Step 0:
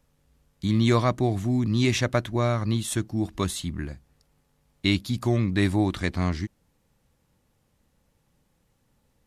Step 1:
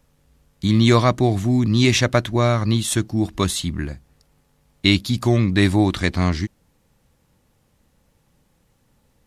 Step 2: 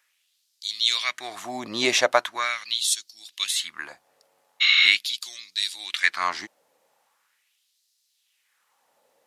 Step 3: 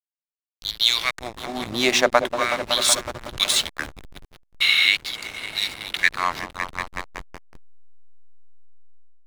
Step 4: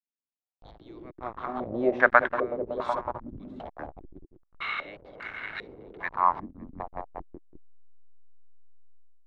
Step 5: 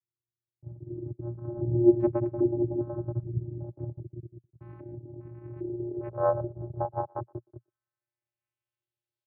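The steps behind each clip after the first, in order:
dynamic bell 4.4 kHz, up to +3 dB, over -46 dBFS, Q 0.76; trim +6 dB
spectral replace 4.64–4.85 s, 1.1–7.3 kHz after; LFO high-pass sine 0.41 Hz 570–4600 Hz; trim -1.5 dB
delay with an opening low-pass 186 ms, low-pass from 750 Hz, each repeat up 1 oct, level -6 dB; hysteresis with a dead band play -25 dBFS; level rider gain up to 11 dB; trim -1 dB
step-sequenced low-pass 2.5 Hz 260–1600 Hz; trim -6 dB
vocoder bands 8, square 118 Hz; low-pass sweep 260 Hz -> 4.1 kHz, 5.27–9.09 s; speakerphone echo 120 ms, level -28 dB; trim +3.5 dB

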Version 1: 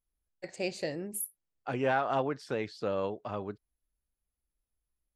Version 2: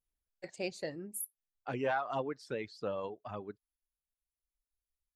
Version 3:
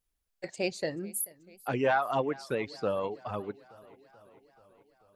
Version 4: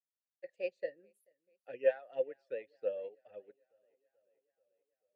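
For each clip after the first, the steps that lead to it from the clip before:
reverb removal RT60 1.7 s; trim -3.5 dB
modulated delay 436 ms, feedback 65%, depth 91 cents, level -22.5 dB; trim +6.5 dB
vowel filter e; upward expansion 1.5:1, over -55 dBFS; trim +3 dB

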